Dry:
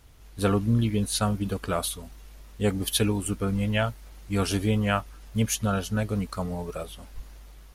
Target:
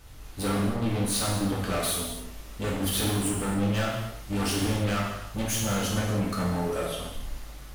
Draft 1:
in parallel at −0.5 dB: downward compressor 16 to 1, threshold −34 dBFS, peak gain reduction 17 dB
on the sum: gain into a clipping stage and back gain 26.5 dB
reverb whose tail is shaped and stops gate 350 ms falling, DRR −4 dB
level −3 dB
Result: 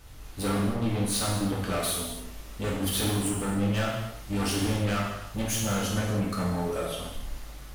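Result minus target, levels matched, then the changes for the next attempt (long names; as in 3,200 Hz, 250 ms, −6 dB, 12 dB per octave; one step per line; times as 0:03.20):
downward compressor: peak gain reduction +8 dB
change: downward compressor 16 to 1, threshold −25.5 dBFS, peak gain reduction 9 dB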